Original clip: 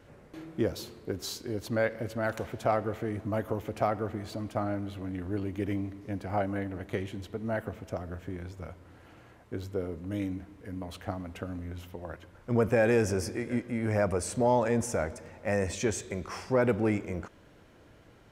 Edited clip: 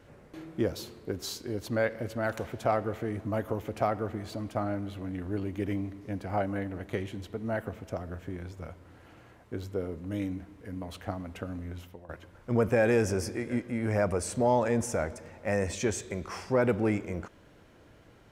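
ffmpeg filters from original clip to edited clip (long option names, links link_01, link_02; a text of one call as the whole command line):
ffmpeg -i in.wav -filter_complex "[0:a]asplit=2[link_01][link_02];[link_01]atrim=end=12.09,asetpts=PTS-STARTPTS,afade=type=out:start_time=11.75:duration=0.34:silence=0.211349[link_03];[link_02]atrim=start=12.09,asetpts=PTS-STARTPTS,afade=type=in:duration=0.004:curve=hsin:silence=0.211349[link_04];[link_03][link_04]concat=n=2:v=0:a=1" out.wav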